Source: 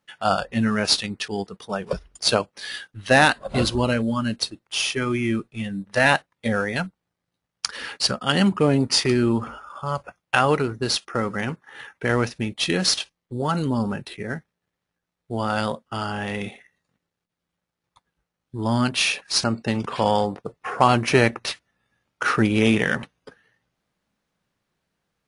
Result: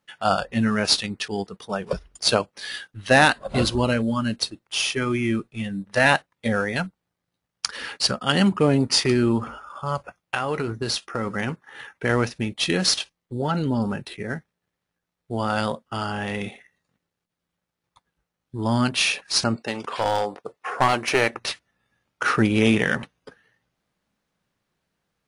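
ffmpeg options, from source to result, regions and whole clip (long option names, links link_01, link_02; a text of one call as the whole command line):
ffmpeg -i in.wav -filter_complex "[0:a]asettb=1/sr,asplit=3[link_01][link_02][link_03];[link_01]atrim=end=10.214[link_04];[link_02]atrim=start=10.21:end=11.27,asetpts=PTS-STARTPTS,afade=type=in:duration=0.004:curve=qsin,afade=type=out:start_time=1.056:duration=0.004:curve=qsin,acompressor=threshold=-21dB:ratio=4:attack=3.2:release=140:knee=1:detection=peak,asplit=2[link_05][link_06];[link_06]adelay=18,volume=-12.5dB[link_07];[link_05][link_07]amix=inputs=2:normalize=0,atrim=end_sample=46746[link_08];[link_03]atrim=start=11.266[link_09];[link_04][link_08]acrossfade=duration=0.004:curve1=hsin:curve2=qsin[link_10];[link_10][link_09]acrossfade=duration=0.004:curve1=qsin:curve2=hsin,asettb=1/sr,asplit=3[link_11][link_12][link_13];[link_11]atrim=end=13.354[link_14];[link_12]atrim=start=13.35:end=13.82,asetpts=PTS-STARTPTS,afade=type=in:duration=0.004:curve=qsin,afade=type=out:start_time=0.466:duration=0.004:curve=qsin,bandreject=frequency=1100:width=5.3,acrossover=split=5200[link_15][link_16];[link_16]acompressor=threshold=-59dB:ratio=4:attack=1:release=60[link_17];[link_15][link_17]amix=inputs=2:normalize=0[link_18];[link_13]atrim=start=13.816[link_19];[link_14][link_18]acrossfade=duration=0.004:curve1=hsin:curve2=qsin[link_20];[link_20][link_19]acrossfade=duration=0.004:curve1=qsin:curve2=hsin,asettb=1/sr,asplit=3[link_21][link_22][link_23];[link_21]atrim=end=19.564[link_24];[link_22]atrim=start=19.56:end=21.35,asetpts=PTS-STARTPTS,afade=type=in:duration=0.004:curve=qsin,afade=type=out:start_time=1.786:duration=0.004:curve=qsin,bass=frequency=250:gain=-15,treble=frequency=4000:gain=0,aeval=exprs='clip(val(0),-1,0.126)':channel_layout=same[link_25];[link_23]atrim=start=21.346[link_26];[link_24][link_25]acrossfade=duration=0.004:curve1=hsin:curve2=qsin[link_27];[link_27][link_26]acrossfade=duration=0.004:curve1=qsin:curve2=hsin" out.wav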